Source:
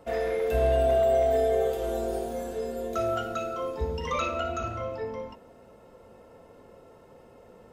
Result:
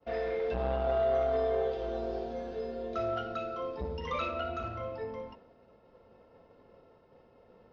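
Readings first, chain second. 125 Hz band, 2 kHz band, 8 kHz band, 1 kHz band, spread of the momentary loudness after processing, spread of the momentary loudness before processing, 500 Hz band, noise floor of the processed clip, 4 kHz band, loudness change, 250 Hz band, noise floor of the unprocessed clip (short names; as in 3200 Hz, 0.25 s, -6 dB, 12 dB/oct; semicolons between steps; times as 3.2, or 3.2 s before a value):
-6.5 dB, -5.0 dB, under -20 dB, -5.0 dB, 10 LU, 11 LU, -6.0 dB, -62 dBFS, -5.5 dB, -6.0 dB, -5.0 dB, -54 dBFS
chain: expander -48 dBFS; steep low-pass 5300 Hz 48 dB/oct; core saturation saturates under 370 Hz; gain -4.5 dB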